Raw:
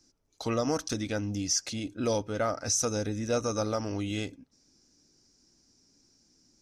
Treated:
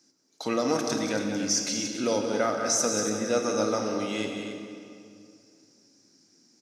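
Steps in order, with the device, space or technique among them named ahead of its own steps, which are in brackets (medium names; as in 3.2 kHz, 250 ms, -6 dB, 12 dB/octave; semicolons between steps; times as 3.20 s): stadium PA (high-pass 160 Hz 24 dB/octave; peaking EQ 1.9 kHz +3.5 dB 0.6 oct; loudspeakers at several distances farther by 63 m -9 dB, 96 m -10 dB; reverberation RT60 2.4 s, pre-delay 24 ms, DRR 4.5 dB); trim +1.5 dB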